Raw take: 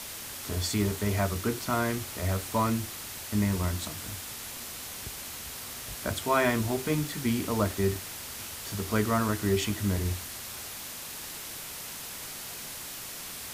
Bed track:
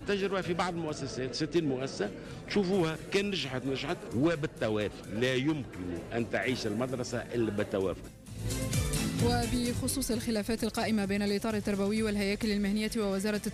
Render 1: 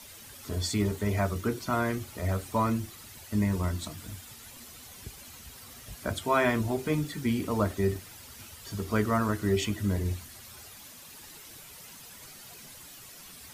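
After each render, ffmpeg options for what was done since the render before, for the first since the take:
-af "afftdn=nr=11:nf=-40"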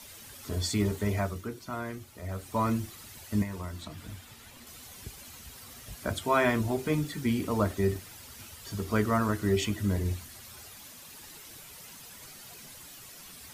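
-filter_complex "[0:a]asettb=1/sr,asplit=3[s0][s1][s2];[s0]atrim=end=3.424[s3];[s1]atrim=start=3.42:end=4.67,asetpts=PTS-STARTPTS,afade=t=in:d=0.004:c=qsin,afade=t=out:st=1.246:d=0.004:c=qsin,acrossover=split=490|4100[s4][s5][s6];[s4]acompressor=threshold=0.0141:ratio=4[s7];[s5]acompressor=threshold=0.00794:ratio=4[s8];[s6]acompressor=threshold=0.002:ratio=4[s9];[s7][s8][s9]amix=inputs=3:normalize=0[s10];[s2]atrim=start=4.666[s11];[s3][s10]acrossfade=d=0.004:c1=hsin:c2=qsin[s12];[s12][s11]acrossfade=d=0.004:c1=qsin:c2=hsin,asplit=3[s13][s14][s15];[s13]atrim=end=1.47,asetpts=PTS-STARTPTS,afade=t=out:st=1.05:d=0.42:silence=0.398107[s16];[s14]atrim=start=1.47:end=2.29,asetpts=PTS-STARTPTS,volume=0.398[s17];[s15]atrim=start=2.29,asetpts=PTS-STARTPTS,afade=t=in:d=0.42:silence=0.398107[s18];[s16][s17][s18]concat=n=3:v=0:a=1"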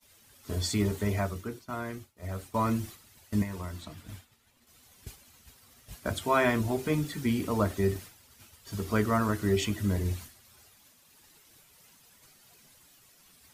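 -af "agate=range=0.0224:threshold=0.0112:ratio=3:detection=peak"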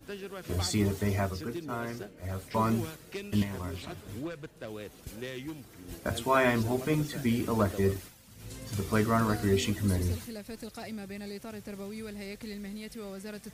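-filter_complex "[1:a]volume=0.299[s0];[0:a][s0]amix=inputs=2:normalize=0"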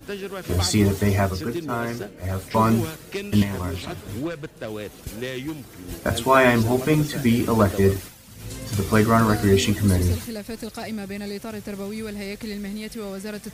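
-af "volume=2.82"

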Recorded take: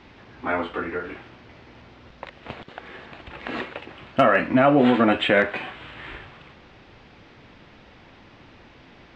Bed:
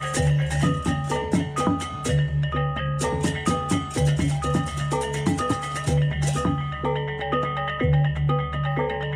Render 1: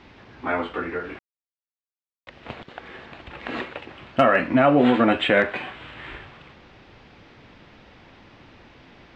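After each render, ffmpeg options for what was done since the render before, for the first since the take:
-filter_complex "[0:a]asplit=3[s0][s1][s2];[s0]atrim=end=1.19,asetpts=PTS-STARTPTS,afade=t=out:st=1.186:d=0.004:c=hsin[s3];[s1]atrim=start=1.19:end=2.27,asetpts=PTS-STARTPTS,volume=0[s4];[s2]atrim=start=2.27,asetpts=PTS-STARTPTS,afade=t=in:d=0.004:c=hsin[s5];[s3][s4][s5]concat=n=3:v=0:a=1"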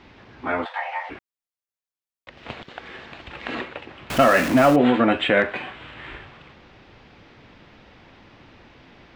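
-filter_complex "[0:a]asplit=3[s0][s1][s2];[s0]afade=t=out:st=0.64:d=0.02[s3];[s1]afreqshift=450,afade=t=in:st=0.64:d=0.02,afade=t=out:st=1.09:d=0.02[s4];[s2]afade=t=in:st=1.09:d=0.02[s5];[s3][s4][s5]amix=inputs=3:normalize=0,asettb=1/sr,asplit=3[s6][s7][s8];[s6]atrim=end=2.374[s9];[s7]atrim=start=2.37:end=3.55,asetpts=PTS-STARTPTS,afade=t=in:d=0.004:c=qsin,afade=t=out:st=1.176:d=0.004:c=qsin,highshelf=f=2400:g=6[s10];[s8]atrim=start=3.546[s11];[s9][s10]acrossfade=d=0.004:c1=hsin:c2=qsin[s12];[s12][s11]acrossfade=d=0.004:c1=qsin:c2=hsin,asettb=1/sr,asplit=3[s13][s14][s15];[s13]atrim=end=4.104[s16];[s14]atrim=start=4.1:end=4.76,asetpts=PTS-STARTPTS,afade=t=in:d=0.004:c=qsin,afade=t=out:st=0.656:d=0.004:c=qsin,aeval=exprs='val(0)+0.5*0.075*sgn(val(0))':c=same[s17];[s15]atrim=start=4.756[s18];[s16][s17]acrossfade=d=0.004:c1=hsin:c2=qsin[s19];[s19][s18]acrossfade=d=0.004:c1=qsin:c2=hsin"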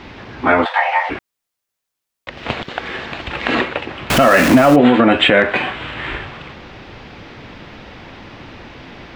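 -af "acompressor=threshold=0.0891:ratio=2,alimiter=level_in=4.47:limit=0.891:release=50:level=0:latency=1"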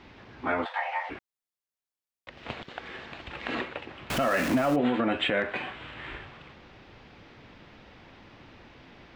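-af "volume=0.178"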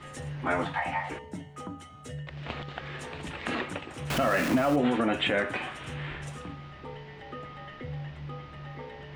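-filter_complex "[1:a]volume=0.133[s0];[0:a][s0]amix=inputs=2:normalize=0"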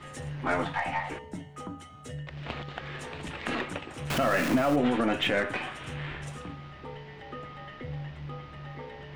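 -af "aeval=exprs='0.188*(cos(1*acos(clip(val(0)/0.188,-1,1)))-cos(1*PI/2))+0.00596*(cos(8*acos(clip(val(0)/0.188,-1,1)))-cos(8*PI/2))':c=same"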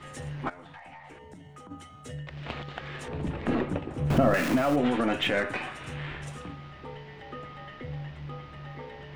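-filter_complex "[0:a]asplit=3[s0][s1][s2];[s0]afade=t=out:st=0.48:d=0.02[s3];[s1]acompressor=threshold=0.00708:ratio=12:attack=3.2:release=140:knee=1:detection=peak,afade=t=in:st=0.48:d=0.02,afade=t=out:st=1.7:d=0.02[s4];[s2]afade=t=in:st=1.7:d=0.02[s5];[s3][s4][s5]amix=inputs=3:normalize=0,asettb=1/sr,asplit=3[s6][s7][s8];[s6]atrim=end=3.084[s9];[s7]atrim=start=3.08:end=4.34,asetpts=PTS-STARTPTS,afade=t=in:d=0.004:c=qsin,afade=t=out:st=1.256:d=0.004:c=qsin,tiltshelf=f=970:g=9.5[s10];[s8]atrim=start=4.336[s11];[s9][s10]acrossfade=d=0.004:c1=hsin:c2=qsin[s12];[s12][s11]acrossfade=d=0.004:c1=qsin:c2=hsin,asettb=1/sr,asplit=3[s13][s14][s15];[s13]atrim=end=5.404[s16];[s14]atrim=start=5.4:end=5.93,asetpts=PTS-STARTPTS,afade=t=in:d=0.004:c=qsin,afade=t=out:st=0.526:d=0.004:c=qsin,bandreject=f=3200:w=12[s17];[s15]atrim=start=5.926[s18];[s16][s17]acrossfade=d=0.004:c1=hsin:c2=qsin[s19];[s19][s18]acrossfade=d=0.004:c1=qsin:c2=hsin"

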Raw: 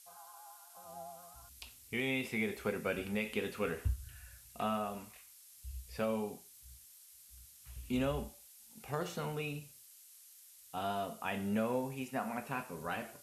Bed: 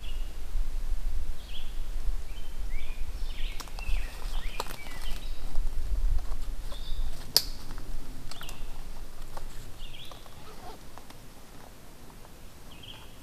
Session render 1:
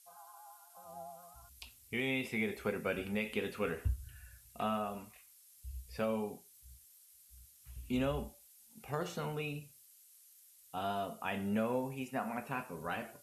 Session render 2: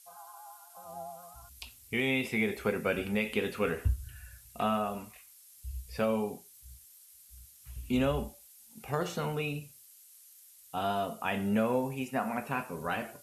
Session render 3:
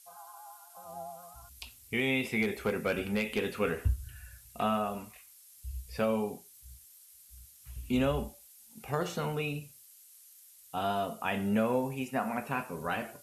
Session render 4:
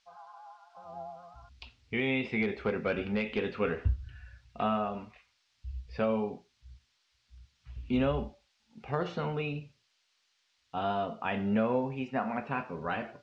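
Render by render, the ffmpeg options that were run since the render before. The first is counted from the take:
-af "afftdn=nr=6:nf=-59"
-af "volume=1.88"
-filter_complex "[0:a]asettb=1/sr,asplit=3[s0][s1][s2];[s0]atrim=end=2.424[s3];[s1]atrim=start=2.42:end=3.55,asetpts=PTS-STARTPTS,afade=t=in:d=0.004:c=qsin,afade=t=out:st=1.126:d=0.004:c=qsin,asoftclip=type=hard:threshold=0.0708[s4];[s2]atrim=start=3.546[s5];[s3][s4]acrossfade=d=0.004:c1=hsin:c2=qsin[s6];[s6][s5]acrossfade=d=0.004:c1=qsin:c2=hsin"
-af "lowpass=f=5100:w=0.5412,lowpass=f=5100:w=1.3066,aemphasis=mode=reproduction:type=50fm"

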